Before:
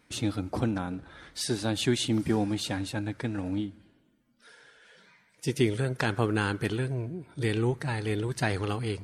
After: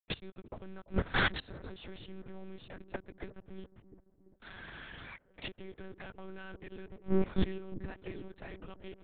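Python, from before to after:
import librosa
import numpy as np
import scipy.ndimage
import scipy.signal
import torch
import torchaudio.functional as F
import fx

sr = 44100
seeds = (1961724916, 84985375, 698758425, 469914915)

p1 = scipy.signal.sosfilt(scipy.signal.butter(4, 130.0, 'highpass', fs=sr, output='sos'), x)
p2 = fx.high_shelf(p1, sr, hz=2500.0, db=7.0)
p3 = fx.leveller(p2, sr, passes=3)
p4 = fx.level_steps(p3, sr, step_db=21)
p5 = fx.gate_flip(p4, sr, shuts_db=-27.0, range_db=-41)
p6 = fx.quant_dither(p5, sr, seeds[0], bits=12, dither='none')
p7 = fx.air_absorb(p6, sr, metres=250.0)
p8 = p7 + fx.echo_wet_lowpass(p7, sr, ms=346, feedback_pct=57, hz=600.0, wet_db=-13.5, dry=0)
p9 = fx.lpc_monotone(p8, sr, seeds[1], pitch_hz=190.0, order=8)
y = p9 * 10.0 ** (18.0 / 20.0)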